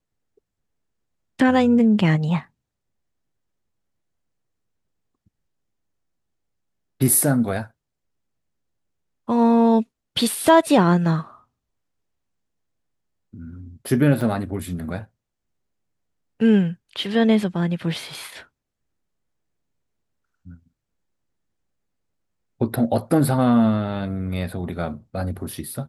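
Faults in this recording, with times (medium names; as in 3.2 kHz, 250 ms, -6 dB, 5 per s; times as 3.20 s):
14.21 s: dropout 2.1 ms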